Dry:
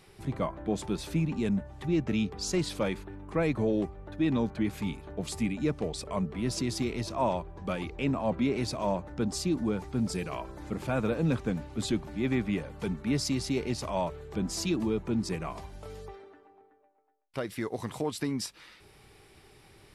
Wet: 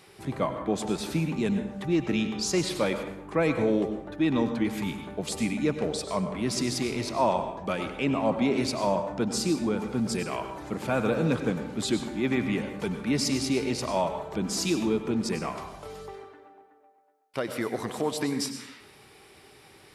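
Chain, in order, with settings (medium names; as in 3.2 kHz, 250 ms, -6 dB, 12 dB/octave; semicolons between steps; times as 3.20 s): high-pass 220 Hz 6 dB/octave; reverberation RT60 0.80 s, pre-delay 87 ms, DRR 7.5 dB; trim +4.5 dB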